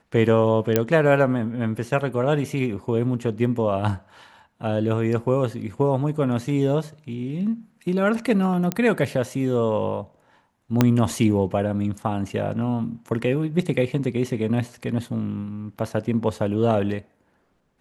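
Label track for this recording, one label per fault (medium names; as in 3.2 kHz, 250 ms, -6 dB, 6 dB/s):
0.760000	0.760000	pop -4 dBFS
8.720000	8.720000	pop -9 dBFS
10.810000	10.810000	pop -3 dBFS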